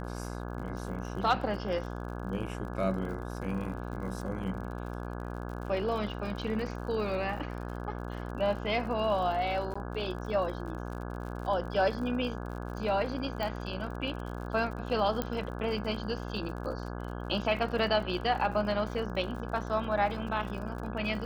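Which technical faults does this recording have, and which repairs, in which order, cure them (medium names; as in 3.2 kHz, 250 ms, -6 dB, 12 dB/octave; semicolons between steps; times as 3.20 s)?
buzz 60 Hz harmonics 28 -38 dBFS
crackle 60 per s -40 dBFS
9.74–9.76 s: dropout 15 ms
13.43 s: pop -21 dBFS
15.22 s: pop -16 dBFS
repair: de-click; de-hum 60 Hz, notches 28; interpolate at 9.74 s, 15 ms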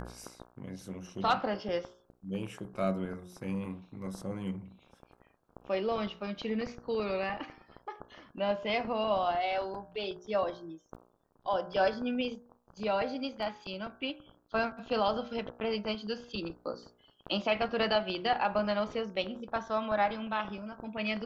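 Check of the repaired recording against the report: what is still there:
13.43 s: pop
15.22 s: pop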